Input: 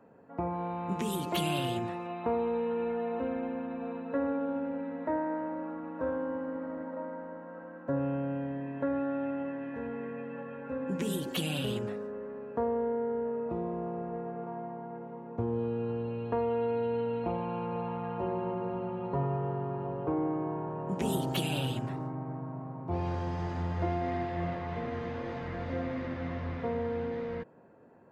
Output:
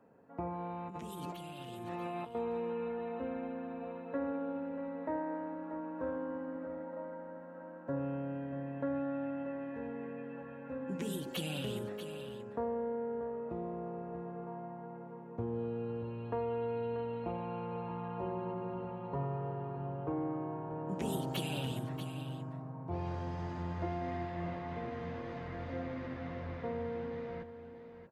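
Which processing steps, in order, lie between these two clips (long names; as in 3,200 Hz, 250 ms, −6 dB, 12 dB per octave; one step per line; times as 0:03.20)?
0:00.88–0:02.35: compressor whose output falls as the input rises −39 dBFS, ratio −1
single-tap delay 636 ms −10.5 dB
level −5.5 dB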